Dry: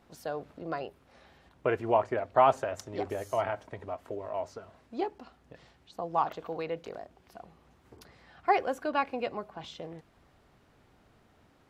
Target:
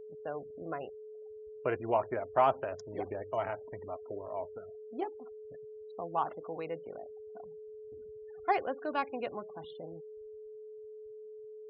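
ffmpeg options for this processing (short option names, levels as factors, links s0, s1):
-af "adynamicsmooth=sensitivity=7.5:basefreq=3300,afftfilt=real='re*gte(hypot(re,im),0.00708)':imag='im*gte(hypot(re,im),0.00708)':win_size=1024:overlap=0.75,aeval=exprs='val(0)+0.00891*sin(2*PI*430*n/s)':c=same,volume=0.631"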